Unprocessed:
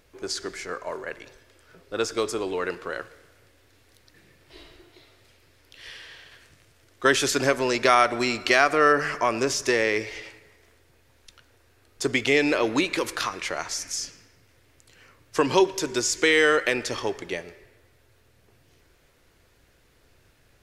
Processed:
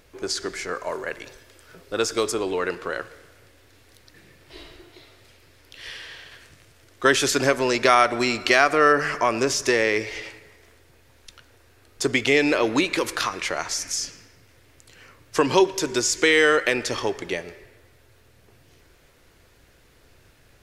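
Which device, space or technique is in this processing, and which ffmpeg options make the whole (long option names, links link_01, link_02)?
parallel compression: -filter_complex "[0:a]asettb=1/sr,asplit=3[link_01][link_02][link_03];[link_01]atrim=end=0.754[link_04];[link_02]atrim=start=0.75:end=2.32,asetpts=PTS-STARTPTS,afade=type=in:duration=0.004:curve=qsin,afade=type=out:start_time=1.566:duration=0.004:curve=qsin,highshelf=frequency=5200:gain=5[link_05];[link_03]atrim=start=2.316[link_06];[link_04][link_05]acrossfade=duration=0.004:curve1=hsin:curve2=qsin[link_07];[link_07][link_06]acrossfade=duration=0.004:curve1=qsin:curve2=hsin,asplit=2[link_08][link_09];[link_09]acompressor=threshold=-32dB:ratio=6,volume=-5.5dB[link_10];[link_08][link_10]amix=inputs=2:normalize=0,volume=1dB"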